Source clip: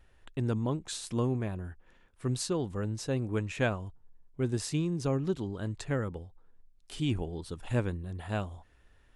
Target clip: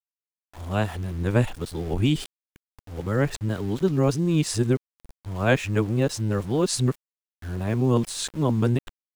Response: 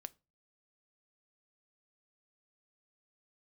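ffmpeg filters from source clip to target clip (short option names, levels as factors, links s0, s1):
-af "areverse,aeval=exprs='val(0)*gte(abs(val(0)),0.00398)':c=same,volume=2.66"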